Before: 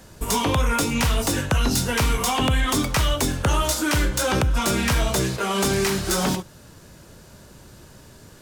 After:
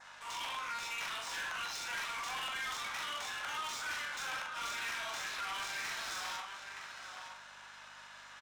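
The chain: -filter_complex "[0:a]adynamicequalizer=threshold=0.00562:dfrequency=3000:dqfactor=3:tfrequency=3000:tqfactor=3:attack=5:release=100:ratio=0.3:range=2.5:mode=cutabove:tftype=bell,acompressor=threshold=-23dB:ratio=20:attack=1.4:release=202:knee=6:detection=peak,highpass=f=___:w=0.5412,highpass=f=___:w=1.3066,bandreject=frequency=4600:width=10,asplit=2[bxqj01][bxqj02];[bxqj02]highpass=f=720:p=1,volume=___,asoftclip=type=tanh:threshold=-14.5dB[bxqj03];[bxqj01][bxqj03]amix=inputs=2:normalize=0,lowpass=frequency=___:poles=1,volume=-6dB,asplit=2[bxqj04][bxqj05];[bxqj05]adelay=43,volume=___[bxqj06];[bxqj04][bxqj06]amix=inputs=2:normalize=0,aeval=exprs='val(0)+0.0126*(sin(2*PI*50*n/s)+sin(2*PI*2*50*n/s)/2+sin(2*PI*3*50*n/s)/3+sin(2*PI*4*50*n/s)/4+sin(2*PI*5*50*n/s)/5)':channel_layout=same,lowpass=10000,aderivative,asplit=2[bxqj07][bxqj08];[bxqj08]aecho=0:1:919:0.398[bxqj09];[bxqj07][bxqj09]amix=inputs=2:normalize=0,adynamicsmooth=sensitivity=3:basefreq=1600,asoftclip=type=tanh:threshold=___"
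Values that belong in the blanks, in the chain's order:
730, 730, 27dB, 3200, -3.5dB, -34dB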